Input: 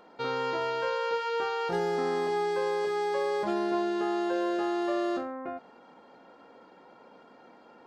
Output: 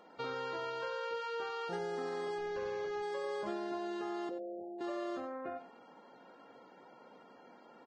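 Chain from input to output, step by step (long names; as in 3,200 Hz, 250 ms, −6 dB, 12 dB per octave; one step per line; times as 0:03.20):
0:02.38–0:03.03: linear delta modulator 32 kbit/s, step −44.5 dBFS
downward compressor 3 to 1, threshold −33 dBFS, peak gain reduction 7 dB
0:04.29–0:04.81: Chebyshev low-pass with heavy ripple 770 Hz, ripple 6 dB
single-tap delay 90 ms −11.5 dB
level −4 dB
Ogg Vorbis 16 kbit/s 22,050 Hz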